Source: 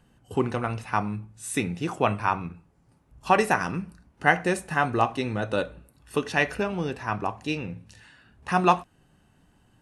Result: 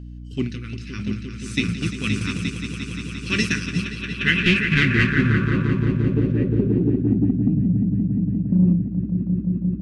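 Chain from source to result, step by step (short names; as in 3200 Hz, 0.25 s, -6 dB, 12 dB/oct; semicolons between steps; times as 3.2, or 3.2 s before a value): 4.4–5.34 half-waves squared off; Chebyshev band-stop 240–2400 Hz, order 2; on a send: swelling echo 0.175 s, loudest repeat 5, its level -7 dB; on the sum: low-pass sweep 5200 Hz -> 210 Hz, 3.74–7.58; in parallel at -10 dB: soft clip -21 dBFS, distortion -14 dB; on the sum: gate -26 dBFS, range -7 dB; hum 60 Hz, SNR 15 dB; gain +4 dB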